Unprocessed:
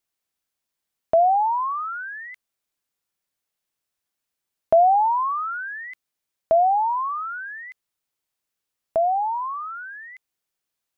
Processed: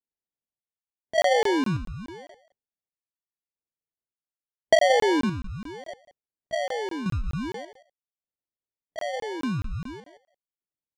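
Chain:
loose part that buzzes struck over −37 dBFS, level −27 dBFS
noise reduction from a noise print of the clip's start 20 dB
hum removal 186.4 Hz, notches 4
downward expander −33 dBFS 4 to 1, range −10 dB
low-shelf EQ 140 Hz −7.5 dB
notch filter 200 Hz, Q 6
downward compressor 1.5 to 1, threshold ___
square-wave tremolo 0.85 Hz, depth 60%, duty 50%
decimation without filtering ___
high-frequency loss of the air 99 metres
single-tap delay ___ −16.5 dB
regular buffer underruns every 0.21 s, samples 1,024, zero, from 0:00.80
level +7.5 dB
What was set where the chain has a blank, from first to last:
−41 dBFS, 34×, 176 ms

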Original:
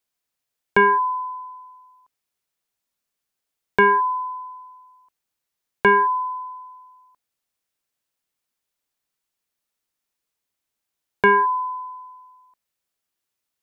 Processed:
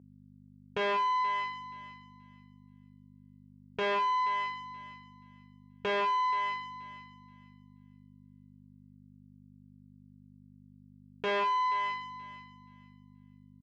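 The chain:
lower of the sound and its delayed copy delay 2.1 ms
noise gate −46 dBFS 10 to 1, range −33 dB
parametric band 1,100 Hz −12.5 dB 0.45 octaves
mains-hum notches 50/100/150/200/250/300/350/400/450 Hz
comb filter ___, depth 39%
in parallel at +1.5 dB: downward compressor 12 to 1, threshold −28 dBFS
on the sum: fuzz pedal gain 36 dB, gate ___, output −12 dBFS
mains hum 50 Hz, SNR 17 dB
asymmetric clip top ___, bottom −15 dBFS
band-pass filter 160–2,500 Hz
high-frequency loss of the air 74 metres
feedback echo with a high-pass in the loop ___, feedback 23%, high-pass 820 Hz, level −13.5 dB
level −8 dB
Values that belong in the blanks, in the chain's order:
6.8 ms, −38 dBFS, −24.5 dBFS, 478 ms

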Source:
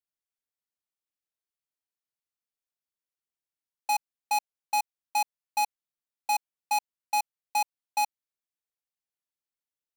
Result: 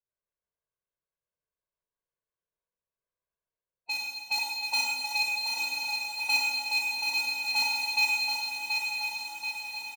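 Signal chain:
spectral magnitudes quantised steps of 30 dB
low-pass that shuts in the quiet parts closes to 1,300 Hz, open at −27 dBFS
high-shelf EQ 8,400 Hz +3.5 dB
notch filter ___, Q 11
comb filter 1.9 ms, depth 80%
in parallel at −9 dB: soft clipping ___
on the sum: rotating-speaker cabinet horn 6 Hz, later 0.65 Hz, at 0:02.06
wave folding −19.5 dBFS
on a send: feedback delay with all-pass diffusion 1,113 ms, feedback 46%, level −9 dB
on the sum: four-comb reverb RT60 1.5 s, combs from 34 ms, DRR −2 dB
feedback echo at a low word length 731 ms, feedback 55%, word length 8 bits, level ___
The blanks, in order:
4,800 Hz, −32.5 dBFS, −5 dB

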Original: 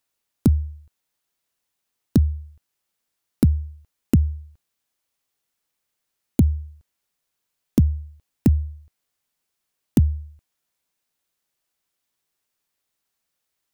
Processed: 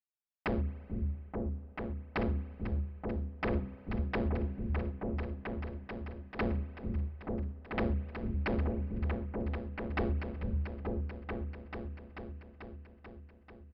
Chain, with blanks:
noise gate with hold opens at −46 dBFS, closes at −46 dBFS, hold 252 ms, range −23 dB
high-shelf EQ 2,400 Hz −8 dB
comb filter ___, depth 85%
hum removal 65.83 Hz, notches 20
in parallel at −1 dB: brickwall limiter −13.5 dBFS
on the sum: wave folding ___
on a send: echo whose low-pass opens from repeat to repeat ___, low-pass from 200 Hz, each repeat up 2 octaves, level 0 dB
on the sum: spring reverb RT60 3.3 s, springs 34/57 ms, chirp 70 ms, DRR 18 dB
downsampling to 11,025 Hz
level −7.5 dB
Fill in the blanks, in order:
4.7 ms, −19 dBFS, 439 ms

